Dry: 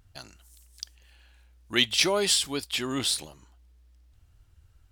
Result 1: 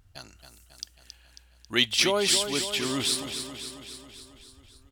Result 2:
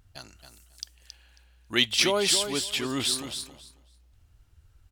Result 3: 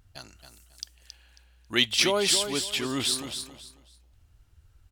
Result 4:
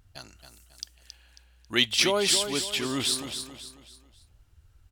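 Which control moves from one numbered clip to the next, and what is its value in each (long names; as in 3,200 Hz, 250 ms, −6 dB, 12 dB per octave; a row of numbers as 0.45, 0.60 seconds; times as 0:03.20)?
repeating echo, feedback: 61, 17, 25, 38%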